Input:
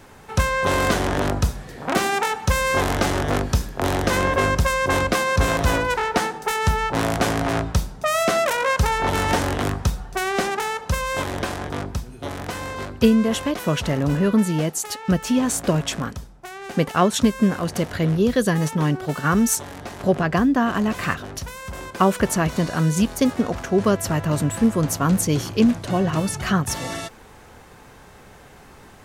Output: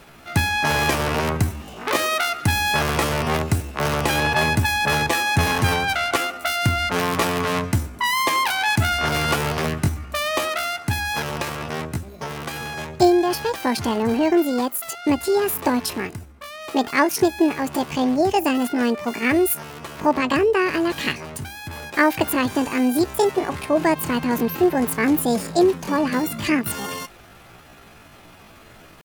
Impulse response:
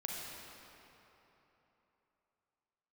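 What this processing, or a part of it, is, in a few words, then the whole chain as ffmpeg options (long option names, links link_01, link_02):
chipmunk voice: -af "asetrate=70004,aresample=44100,atempo=0.629961"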